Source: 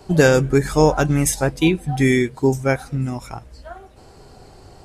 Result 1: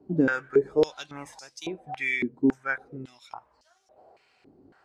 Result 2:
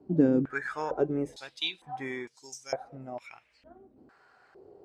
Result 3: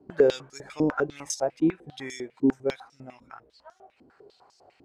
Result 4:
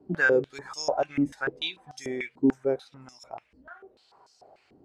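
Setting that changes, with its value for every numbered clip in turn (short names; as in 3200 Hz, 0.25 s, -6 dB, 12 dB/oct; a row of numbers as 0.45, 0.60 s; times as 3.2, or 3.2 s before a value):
stepped band-pass, rate: 3.6, 2.2, 10, 6.8 Hz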